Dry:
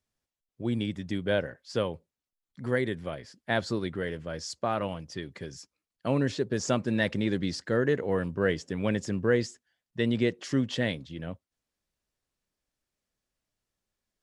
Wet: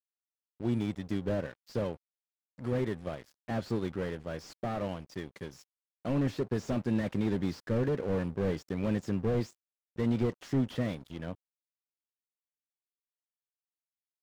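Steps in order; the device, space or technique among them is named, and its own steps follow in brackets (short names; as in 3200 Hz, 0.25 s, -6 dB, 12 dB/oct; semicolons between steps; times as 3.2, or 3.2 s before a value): early transistor amplifier (crossover distortion -47.5 dBFS; slew limiter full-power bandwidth 18 Hz)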